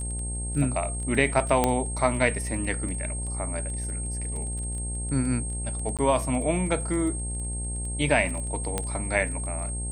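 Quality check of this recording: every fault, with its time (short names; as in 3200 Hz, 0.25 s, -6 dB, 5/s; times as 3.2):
buzz 60 Hz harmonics 16 -32 dBFS
crackle 14/s -32 dBFS
tone 8500 Hz -34 dBFS
1.64 pop -7 dBFS
5.97–5.99 gap 17 ms
8.78 pop -12 dBFS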